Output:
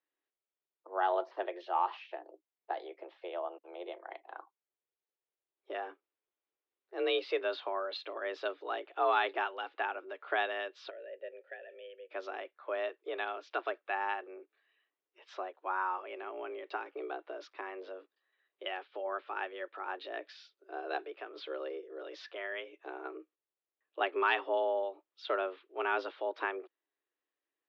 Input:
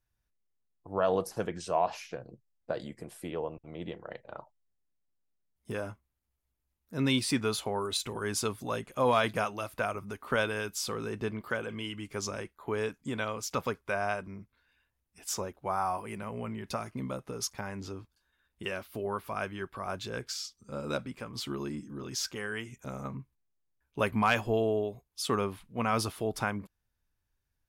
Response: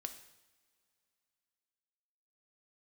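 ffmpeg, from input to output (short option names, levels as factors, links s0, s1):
-filter_complex "[0:a]highpass=f=160:t=q:w=0.5412,highpass=f=160:t=q:w=1.307,lowpass=f=3600:t=q:w=0.5176,lowpass=f=3600:t=q:w=0.7071,lowpass=f=3600:t=q:w=1.932,afreqshift=180,asplit=3[s0][s1][s2];[s0]afade=t=out:st=10.89:d=0.02[s3];[s1]asplit=3[s4][s5][s6];[s4]bandpass=f=530:t=q:w=8,volume=1[s7];[s5]bandpass=f=1840:t=q:w=8,volume=0.501[s8];[s6]bandpass=f=2480:t=q:w=8,volume=0.355[s9];[s7][s8][s9]amix=inputs=3:normalize=0,afade=t=in:st=10.89:d=0.02,afade=t=out:st=12.09:d=0.02[s10];[s2]afade=t=in:st=12.09:d=0.02[s11];[s3][s10][s11]amix=inputs=3:normalize=0,volume=0.708"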